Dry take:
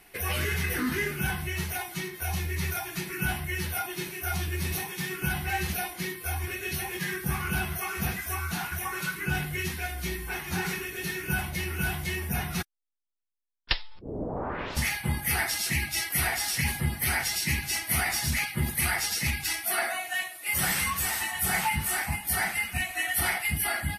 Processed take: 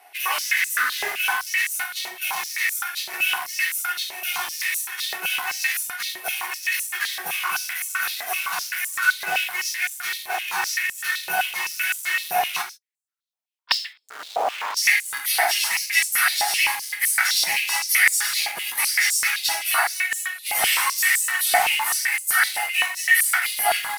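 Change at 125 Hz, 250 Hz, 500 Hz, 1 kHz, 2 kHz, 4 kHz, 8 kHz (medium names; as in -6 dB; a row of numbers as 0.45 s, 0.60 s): under -25 dB, under -15 dB, +2.0 dB, +8.0 dB, +9.0 dB, +9.0 dB, +7.5 dB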